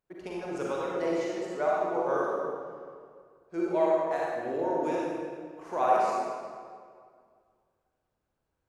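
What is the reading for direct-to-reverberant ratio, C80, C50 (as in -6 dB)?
-6.0 dB, -1.5 dB, -4.0 dB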